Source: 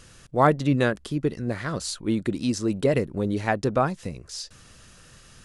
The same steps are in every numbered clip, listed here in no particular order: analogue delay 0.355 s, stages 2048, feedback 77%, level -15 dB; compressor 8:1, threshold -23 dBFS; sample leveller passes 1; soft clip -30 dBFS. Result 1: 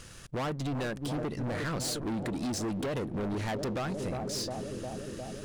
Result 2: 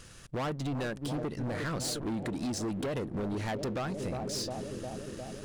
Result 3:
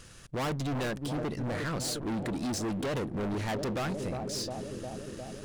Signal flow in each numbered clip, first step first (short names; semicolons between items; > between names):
analogue delay > compressor > sample leveller > soft clip; analogue delay > sample leveller > compressor > soft clip; analogue delay > sample leveller > soft clip > compressor